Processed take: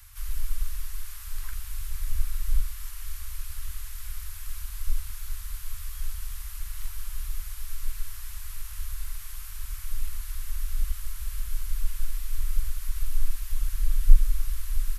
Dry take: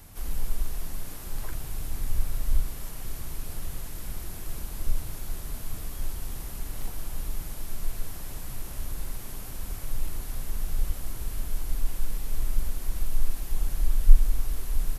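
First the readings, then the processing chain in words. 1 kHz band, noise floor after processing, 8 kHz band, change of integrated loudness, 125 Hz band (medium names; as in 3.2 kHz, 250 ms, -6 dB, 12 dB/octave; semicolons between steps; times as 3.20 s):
-5.5 dB, -39 dBFS, 0.0 dB, -0.5 dB, -1.0 dB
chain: inverse Chebyshev band-stop 210–440 Hz, stop band 70 dB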